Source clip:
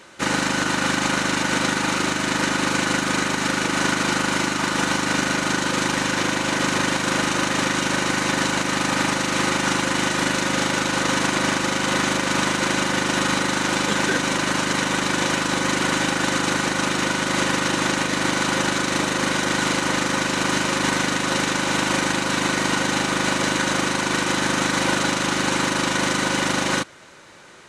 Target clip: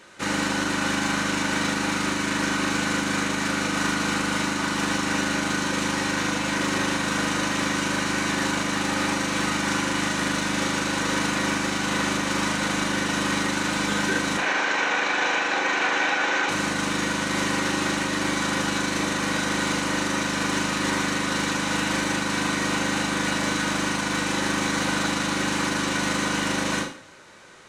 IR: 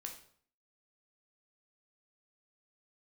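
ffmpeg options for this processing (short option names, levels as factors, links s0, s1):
-filter_complex "[0:a]asoftclip=type=tanh:threshold=0.188,asettb=1/sr,asplit=3[s0][s1][s2];[s0]atrim=end=14.374[s3];[s1]atrim=start=14.37:end=16.49,asetpts=PTS-STARTPTS,afade=t=in:d=0.004:c=qsin,afade=t=out:st=2.116:d=0.004:c=qsin,highpass=430,equalizer=f=430:t=q:w=4:g=7,equalizer=f=760:t=q:w=4:g=9,equalizer=f=1600:t=q:w=4:g=6,equalizer=f=2400:t=q:w=4:g=6,equalizer=f=4800:t=q:w=4:g=-5,lowpass=f=6200:w=0.5412,lowpass=f=6200:w=1.3066[s4];[s2]atrim=start=16.486[s5];[s3][s4]acrossfade=d=0.004:c1=hsin:c2=qsin[s6];[s6][s5]acrossfade=d=0.004:c1=qsin:c2=hsin[s7];[1:a]atrim=start_sample=2205[s8];[s7][s8]afir=irnorm=-1:irlink=0,volume=1.12"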